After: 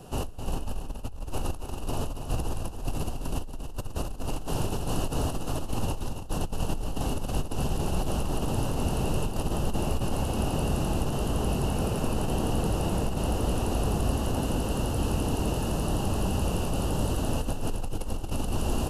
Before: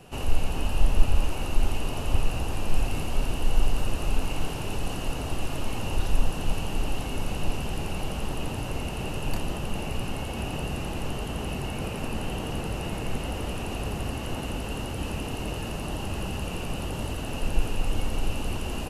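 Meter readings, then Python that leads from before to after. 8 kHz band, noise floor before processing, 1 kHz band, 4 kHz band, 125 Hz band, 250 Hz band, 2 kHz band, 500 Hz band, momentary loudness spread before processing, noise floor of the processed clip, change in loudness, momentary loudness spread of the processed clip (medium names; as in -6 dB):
+2.0 dB, -33 dBFS, +1.5 dB, -2.5 dB, +2.0 dB, +3.0 dB, -5.0 dB, +2.5 dB, 3 LU, -36 dBFS, +1.0 dB, 7 LU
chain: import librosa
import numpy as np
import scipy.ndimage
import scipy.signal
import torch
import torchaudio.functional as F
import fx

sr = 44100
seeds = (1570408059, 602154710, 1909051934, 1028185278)

p1 = fx.peak_eq(x, sr, hz=2200.0, db=-14.5, octaves=0.7)
p2 = fx.over_compress(p1, sr, threshold_db=-29.0, ratio=-1.0)
y = p2 + fx.echo_single(p2, sr, ms=279, db=-8.0, dry=0)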